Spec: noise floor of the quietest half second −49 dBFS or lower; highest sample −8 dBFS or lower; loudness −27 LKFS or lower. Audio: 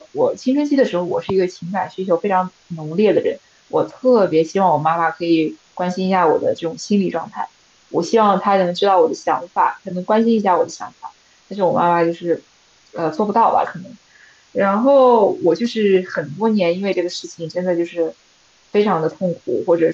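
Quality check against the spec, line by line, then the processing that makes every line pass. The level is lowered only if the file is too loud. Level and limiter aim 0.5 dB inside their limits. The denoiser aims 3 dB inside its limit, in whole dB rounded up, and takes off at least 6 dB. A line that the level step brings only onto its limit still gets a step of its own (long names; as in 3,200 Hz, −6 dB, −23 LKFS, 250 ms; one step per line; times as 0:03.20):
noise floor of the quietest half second −54 dBFS: in spec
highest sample −4.5 dBFS: out of spec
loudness −18.0 LKFS: out of spec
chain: level −9.5 dB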